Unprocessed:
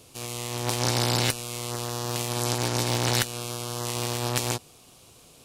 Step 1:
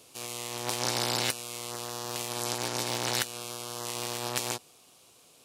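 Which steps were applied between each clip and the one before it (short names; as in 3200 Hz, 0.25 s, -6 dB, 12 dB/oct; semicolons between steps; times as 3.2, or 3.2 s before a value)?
HPF 360 Hz 6 dB/oct; vocal rider within 4 dB 2 s; gain -4 dB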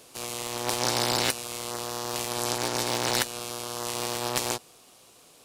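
low shelf 76 Hz -11 dB; in parallel at -11.5 dB: sample-rate reducer 4000 Hz, jitter 0%; on the sum: gain +3 dB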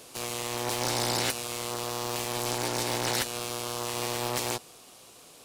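in parallel at 0 dB: limiter -17.5 dBFS, peak gain reduction 11.5 dB; on the sum: soft clip -16 dBFS, distortion -11 dB; gain -3 dB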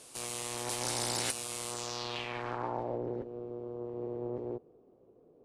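low-pass sweep 9600 Hz -> 420 Hz, 1.69–3.06; gain -7 dB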